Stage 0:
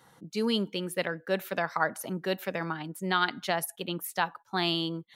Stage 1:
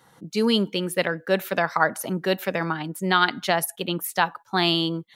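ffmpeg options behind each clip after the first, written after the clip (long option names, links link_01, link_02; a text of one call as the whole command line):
ffmpeg -i in.wav -af "dynaudnorm=framelen=120:gausssize=3:maxgain=5dB,volume=2dB" out.wav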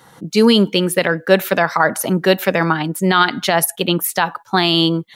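ffmpeg -i in.wav -af "alimiter=level_in=11dB:limit=-1dB:release=50:level=0:latency=1,volume=-1dB" out.wav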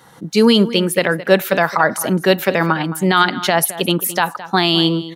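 ffmpeg -i in.wav -filter_complex "[0:a]asplit=2[link_01][link_02];[link_02]adelay=215.7,volume=-15dB,highshelf=frequency=4000:gain=-4.85[link_03];[link_01][link_03]amix=inputs=2:normalize=0" out.wav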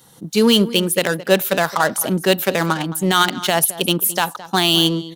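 ffmpeg -i in.wav -filter_complex "[0:a]asplit=2[link_01][link_02];[link_02]adynamicsmooth=sensitivity=1.5:basefreq=590,volume=1dB[link_03];[link_01][link_03]amix=inputs=2:normalize=0,aexciter=amount=2.1:drive=8.1:freq=2800,volume=-9dB" out.wav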